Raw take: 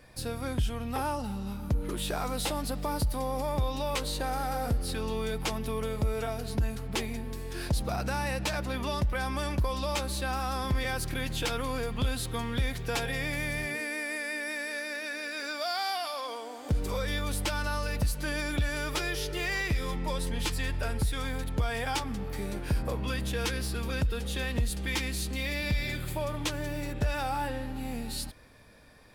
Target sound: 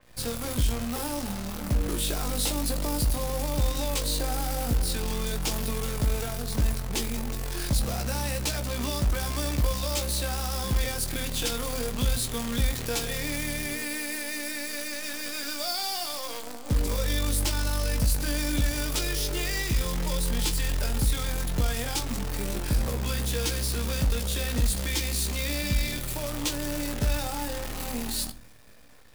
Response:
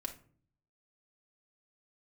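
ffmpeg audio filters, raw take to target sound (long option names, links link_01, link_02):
-filter_complex "[0:a]acrossover=split=450|3000[link_01][link_02][link_03];[link_02]acompressor=threshold=-43dB:ratio=2.5[link_04];[link_01][link_04][link_03]amix=inputs=3:normalize=0,acrusher=bits=7:dc=4:mix=0:aa=0.000001,asplit=2[link_05][link_06];[1:a]atrim=start_sample=2205,adelay=17[link_07];[link_06][link_07]afir=irnorm=-1:irlink=0,volume=-5dB[link_08];[link_05][link_08]amix=inputs=2:normalize=0,adynamicequalizer=threshold=0.00501:dfrequency=4200:dqfactor=0.7:tfrequency=4200:tqfactor=0.7:attack=5:release=100:ratio=0.375:range=2.5:mode=boostabove:tftype=highshelf,volume=1.5dB"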